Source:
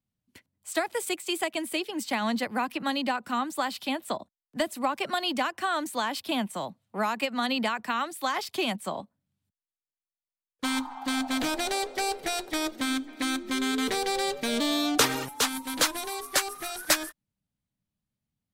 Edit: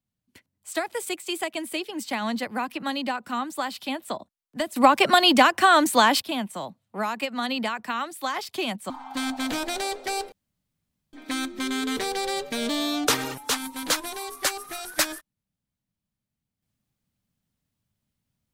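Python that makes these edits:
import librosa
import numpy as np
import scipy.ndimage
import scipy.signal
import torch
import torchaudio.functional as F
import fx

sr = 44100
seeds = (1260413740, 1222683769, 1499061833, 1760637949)

y = fx.edit(x, sr, fx.clip_gain(start_s=4.76, length_s=1.46, db=11.5),
    fx.cut(start_s=8.9, length_s=1.91),
    fx.room_tone_fill(start_s=12.23, length_s=0.81), tone=tone)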